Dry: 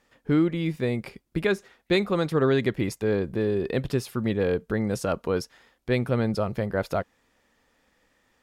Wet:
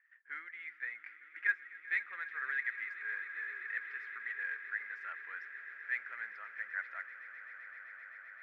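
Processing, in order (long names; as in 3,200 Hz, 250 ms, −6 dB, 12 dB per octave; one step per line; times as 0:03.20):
flat-topped band-pass 1,800 Hz, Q 3.6
phase shifter 1.2 Hz, delay 4.3 ms, feedback 25%
echo that builds up and dies away 129 ms, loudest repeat 8, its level −17.5 dB
level +1.5 dB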